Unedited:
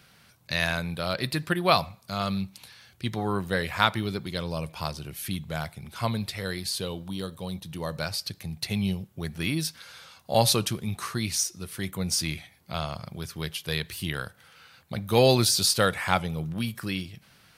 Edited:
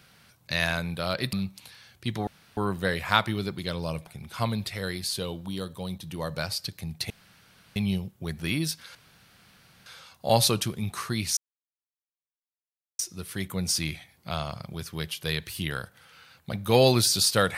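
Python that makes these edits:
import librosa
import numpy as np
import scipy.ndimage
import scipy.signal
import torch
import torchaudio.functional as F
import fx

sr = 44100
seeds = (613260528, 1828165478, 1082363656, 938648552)

y = fx.edit(x, sr, fx.cut(start_s=1.33, length_s=0.98),
    fx.insert_room_tone(at_s=3.25, length_s=0.3),
    fx.cut(start_s=4.75, length_s=0.94),
    fx.insert_room_tone(at_s=8.72, length_s=0.66),
    fx.insert_room_tone(at_s=9.91, length_s=0.91),
    fx.insert_silence(at_s=11.42, length_s=1.62), tone=tone)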